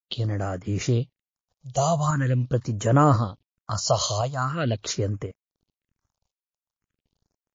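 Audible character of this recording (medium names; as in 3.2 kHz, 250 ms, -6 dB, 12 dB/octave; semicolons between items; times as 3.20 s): tremolo saw up 0.95 Hz, depth 45%; a quantiser's noise floor 12-bit, dither none; phasing stages 4, 0.43 Hz, lowest notch 260–4000 Hz; MP3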